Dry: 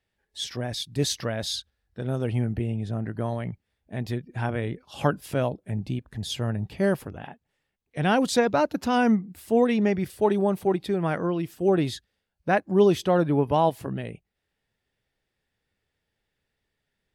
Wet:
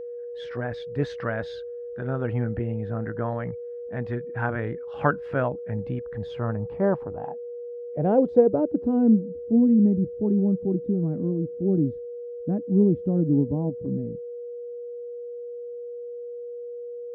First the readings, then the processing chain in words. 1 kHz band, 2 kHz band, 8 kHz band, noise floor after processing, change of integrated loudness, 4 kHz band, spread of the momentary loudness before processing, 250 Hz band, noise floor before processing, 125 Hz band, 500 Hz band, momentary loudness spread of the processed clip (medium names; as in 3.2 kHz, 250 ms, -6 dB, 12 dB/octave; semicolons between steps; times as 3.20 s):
-6.0 dB, -3.0 dB, under -25 dB, -36 dBFS, +0.5 dB, under -15 dB, 13 LU, +3.5 dB, -81 dBFS, +1.0 dB, 0.0 dB, 17 LU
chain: low-pass sweep 1.5 kHz -> 250 Hz, 6.06–9.61 s; whistle 480 Hz -32 dBFS; trim -1 dB